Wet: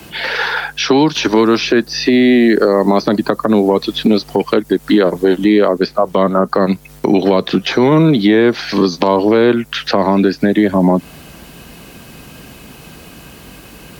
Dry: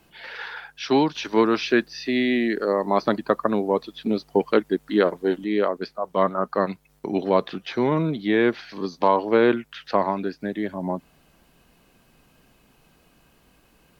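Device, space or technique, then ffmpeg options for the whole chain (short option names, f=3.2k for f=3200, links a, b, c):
mastering chain: -filter_complex "[0:a]highpass=47,equalizer=f=900:t=o:w=1.9:g=-3.5,acrossover=split=150|600|1300|4600[a][b][c][d][e];[a]acompressor=threshold=-45dB:ratio=4[f];[b]acompressor=threshold=-29dB:ratio=4[g];[c]acompressor=threshold=-37dB:ratio=4[h];[d]acompressor=threshold=-46dB:ratio=4[i];[e]acompressor=threshold=-48dB:ratio=4[j];[f][g][h][i][j]amix=inputs=5:normalize=0,acompressor=threshold=-33dB:ratio=2,alimiter=level_in=24.5dB:limit=-1dB:release=50:level=0:latency=1,volume=-1dB"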